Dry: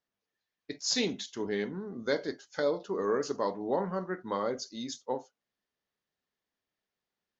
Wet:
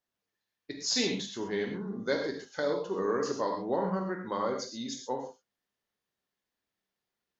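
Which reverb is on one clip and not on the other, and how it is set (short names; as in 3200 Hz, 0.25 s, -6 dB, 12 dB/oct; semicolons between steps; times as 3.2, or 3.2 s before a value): non-linear reverb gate 0.15 s flat, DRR 2.5 dB; gain -1 dB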